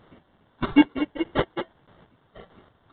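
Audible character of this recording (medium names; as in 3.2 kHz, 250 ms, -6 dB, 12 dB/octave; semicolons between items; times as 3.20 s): a quantiser's noise floor 10-bit, dither triangular; chopped level 1.6 Hz, depth 60%, duty 30%; aliases and images of a low sample rate 2.5 kHz, jitter 0%; µ-law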